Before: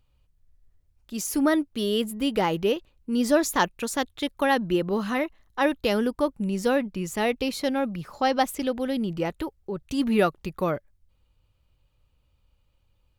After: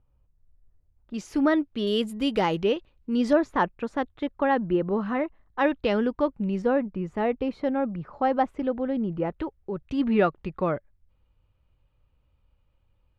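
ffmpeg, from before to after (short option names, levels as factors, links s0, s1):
-af "asetnsamples=n=441:p=0,asendcmd='1.14 lowpass f 3100;1.87 lowpass f 6400;2.63 lowpass f 3700;3.33 lowpass f 1600;5.59 lowpass f 2700;6.62 lowpass f 1400;9.36 lowpass f 2400',lowpass=1200"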